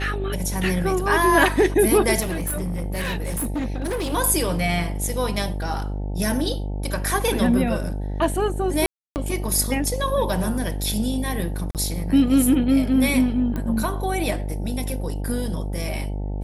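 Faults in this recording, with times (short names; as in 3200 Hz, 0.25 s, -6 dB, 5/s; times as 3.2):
buzz 50 Hz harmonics 18 -27 dBFS
2.2–4.14 clipped -22 dBFS
8.86–9.16 gap 0.299 s
11.71–11.75 gap 38 ms
13.56 pop -16 dBFS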